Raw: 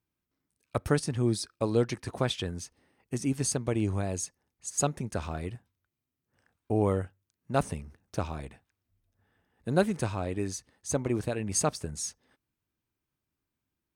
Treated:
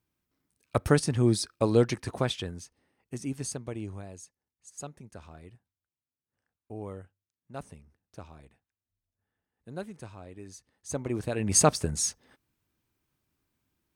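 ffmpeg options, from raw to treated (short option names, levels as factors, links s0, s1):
-af "volume=15,afade=t=out:st=1.85:d=0.79:silence=0.375837,afade=t=out:st=3.33:d=0.85:silence=0.375837,afade=t=in:st=10.45:d=0.83:silence=0.237137,afade=t=in:st=11.28:d=0.28:silence=0.421697"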